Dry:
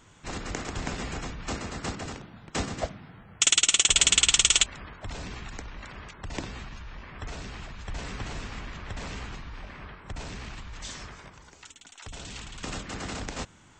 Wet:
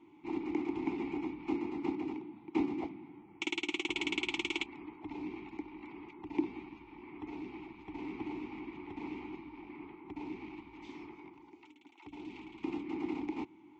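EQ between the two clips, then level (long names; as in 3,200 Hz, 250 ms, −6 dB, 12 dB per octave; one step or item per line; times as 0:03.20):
formant filter u
high-frequency loss of the air 98 metres
parametric band 360 Hz +11.5 dB 0.43 octaves
+6.5 dB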